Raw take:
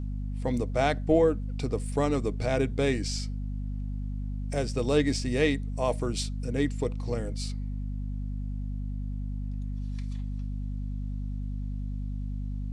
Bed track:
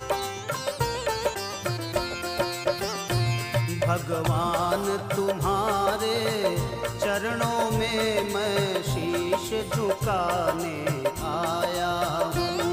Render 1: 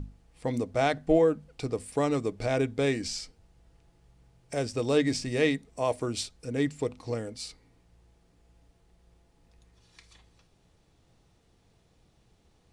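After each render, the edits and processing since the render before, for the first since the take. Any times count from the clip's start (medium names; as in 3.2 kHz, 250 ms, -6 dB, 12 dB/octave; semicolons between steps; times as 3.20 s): hum notches 50/100/150/200/250 Hz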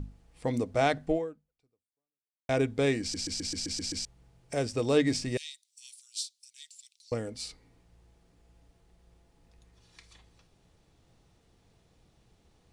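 1.05–2.49 s: fade out exponential; 3.01 s: stutter in place 0.13 s, 8 plays; 5.37–7.12 s: inverse Chebyshev high-pass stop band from 860 Hz, stop band 70 dB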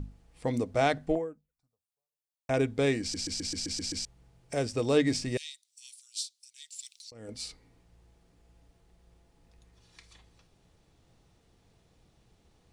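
1.15–2.54 s: touch-sensitive phaser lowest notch 280 Hz, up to 4.1 kHz, full sweep at -33.5 dBFS; 6.72–7.29 s: compressor with a negative ratio -45 dBFS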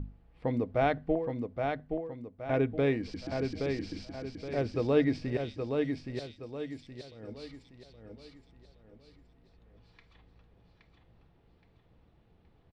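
distance through air 360 m; feedback delay 821 ms, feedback 39%, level -5 dB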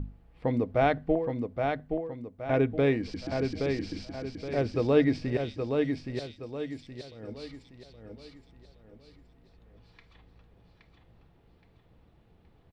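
trim +3 dB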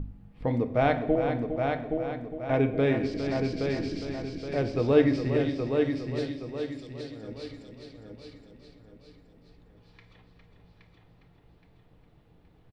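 delay 408 ms -8.5 dB; simulated room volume 390 m³, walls mixed, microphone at 0.48 m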